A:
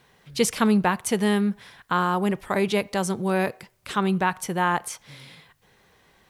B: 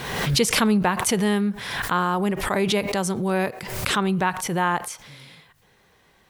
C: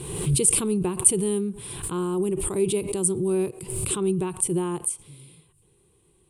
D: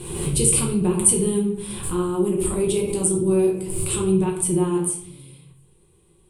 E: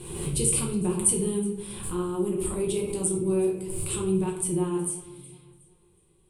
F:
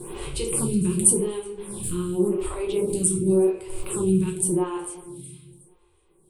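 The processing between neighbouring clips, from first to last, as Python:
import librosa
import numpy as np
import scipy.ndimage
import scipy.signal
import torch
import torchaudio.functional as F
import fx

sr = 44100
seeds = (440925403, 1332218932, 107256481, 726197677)

y1 = fx.pre_swell(x, sr, db_per_s=43.0)
y2 = fx.curve_eq(y1, sr, hz=(160.0, 230.0, 360.0, 620.0, 1100.0, 1800.0, 2600.0, 6000.0, 9200.0, 15000.0), db=(0, -10, 5, -18, -13, -26, -10, -16, 13, -23))
y2 = y2 * 10.0 ** (1.0 / 20.0)
y3 = fx.room_shoebox(y2, sr, seeds[0], volume_m3=97.0, walls='mixed', distance_m=1.0)
y3 = y3 * 10.0 ** (-1.0 / 20.0)
y4 = fx.echo_feedback(y3, sr, ms=368, feedback_pct=35, wet_db=-20.0)
y4 = y4 * 10.0 ** (-6.0 / 20.0)
y5 = fx.stagger_phaser(y4, sr, hz=0.89)
y5 = y5 * 10.0 ** (6.0 / 20.0)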